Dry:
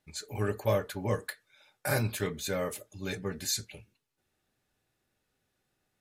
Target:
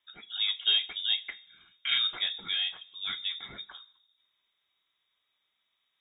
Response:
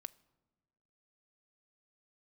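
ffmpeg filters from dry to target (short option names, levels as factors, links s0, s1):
-filter_complex "[1:a]atrim=start_sample=2205[s0];[0:a][s0]afir=irnorm=-1:irlink=0,lowpass=f=3200:t=q:w=0.5098,lowpass=f=3200:t=q:w=0.6013,lowpass=f=3200:t=q:w=0.9,lowpass=f=3200:t=q:w=2.563,afreqshift=-3800,volume=2"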